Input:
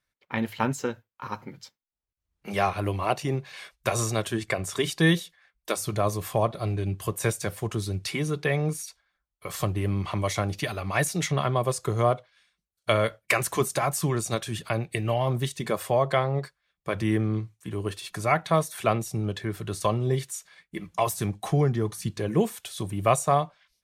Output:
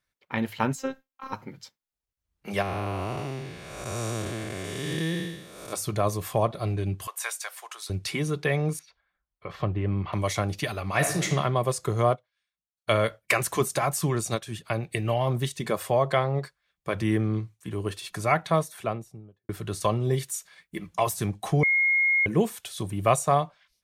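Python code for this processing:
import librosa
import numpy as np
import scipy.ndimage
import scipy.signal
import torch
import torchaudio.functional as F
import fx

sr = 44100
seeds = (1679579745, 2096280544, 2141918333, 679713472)

y = fx.robotise(x, sr, hz=266.0, at=(0.75, 1.33))
y = fx.spec_blur(y, sr, span_ms=380.0, at=(2.61, 5.72), fade=0.02)
y = fx.highpass(y, sr, hz=820.0, slope=24, at=(7.07, 7.9))
y = fx.air_absorb(y, sr, metres=310.0, at=(8.79, 10.13))
y = fx.reverb_throw(y, sr, start_s=10.88, length_s=0.41, rt60_s=0.82, drr_db=4.5)
y = fx.upward_expand(y, sr, threshold_db=-52.0, expansion=1.5, at=(12.14, 12.9), fade=0.02)
y = fx.upward_expand(y, sr, threshold_db=-42.0, expansion=1.5, at=(14.33, 14.83))
y = fx.studio_fade_out(y, sr, start_s=18.36, length_s=1.13)
y = fx.high_shelf(y, sr, hz=9400.0, db=7.0, at=(20.04, 20.79))
y = fx.edit(y, sr, fx.bleep(start_s=21.63, length_s=0.63, hz=2150.0, db=-19.0), tone=tone)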